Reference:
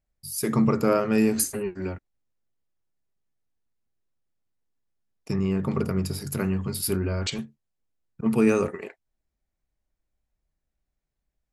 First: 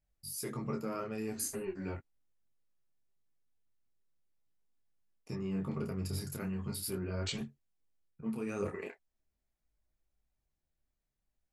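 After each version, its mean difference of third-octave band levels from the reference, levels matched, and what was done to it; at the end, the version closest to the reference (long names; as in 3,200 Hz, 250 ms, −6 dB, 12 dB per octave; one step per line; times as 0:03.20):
3.5 dB: reversed playback
downward compressor 4 to 1, threshold −31 dBFS, peak gain reduction 13.5 dB
reversed playback
micro pitch shift up and down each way 14 cents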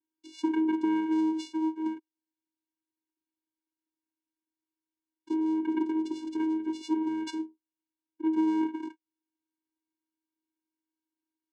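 13.0 dB: downward compressor, threshold −22 dBFS, peak gain reduction 7.5 dB
channel vocoder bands 4, square 317 Hz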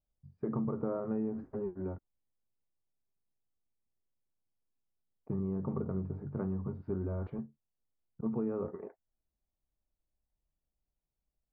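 8.0 dB: low-pass filter 1,100 Hz 24 dB per octave
downward compressor 6 to 1, threshold −24 dBFS, peak gain reduction 9 dB
level −6.5 dB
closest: first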